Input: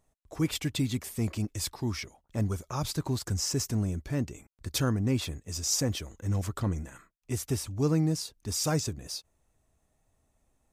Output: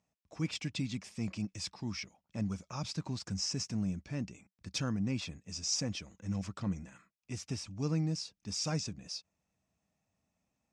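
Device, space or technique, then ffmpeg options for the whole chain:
car door speaker: -af "highpass=93,equalizer=frequency=190:width_type=q:width=4:gain=10,equalizer=frequency=390:width_type=q:width=4:gain=-6,equalizer=frequency=2500:width_type=q:width=4:gain=7,equalizer=frequency=5300:width_type=q:width=4:gain=7,lowpass=frequency=7500:width=0.5412,lowpass=frequency=7500:width=1.3066,volume=-8dB"

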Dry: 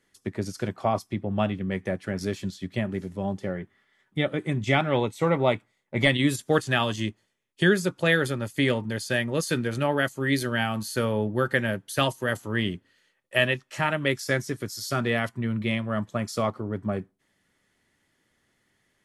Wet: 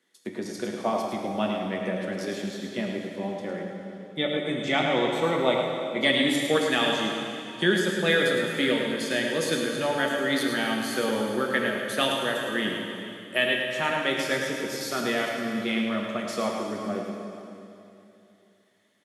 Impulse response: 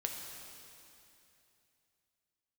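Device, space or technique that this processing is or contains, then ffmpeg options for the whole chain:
PA in a hall: -filter_complex "[0:a]highpass=frequency=180:width=0.5412,highpass=frequency=180:width=1.3066,equalizer=frequency=3600:width_type=o:width=0.23:gain=7,aecho=1:1:107:0.473[link_01];[1:a]atrim=start_sample=2205[link_02];[link_01][link_02]afir=irnorm=-1:irlink=0,volume=-1.5dB"

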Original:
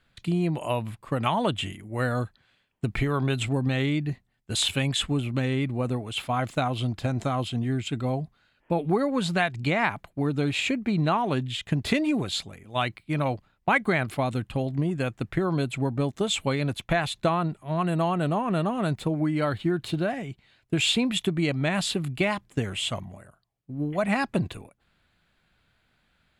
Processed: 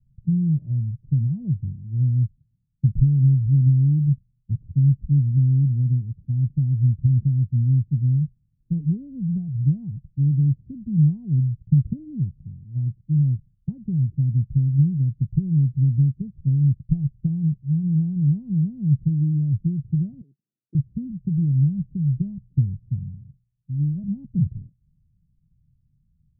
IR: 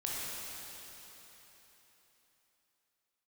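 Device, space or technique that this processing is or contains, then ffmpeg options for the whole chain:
the neighbour's flat through the wall: -filter_complex "[0:a]asettb=1/sr,asplit=3[link_01][link_02][link_03];[link_01]atrim=end=20.214[link_04];[link_02]atrim=start=20.21:end=20.75,asetpts=PTS-STARTPTS,afade=type=in:duration=0.004:curve=qsin,afade=type=out:start_time=0.536:duration=0.004:curve=qsin,highpass=frequency=360:width=0.5412,highpass=frequency=360:width=1.3066[link_05];[link_03]atrim=start=20.746[link_06];[link_04][link_05]acrossfade=duration=0.004:curve1=hsin:curve2=qsin[link_07];[link_07][link_06]acrossfade=duration=0.004:curve1=qsin:curve2=hsin,lowpass=frequency=160:width=0.5412,lowpass=frequency=160:width=1.3066,equalizer=frequency=140:width_type=o:width=0.54:gain=5.5,volume=8dB"

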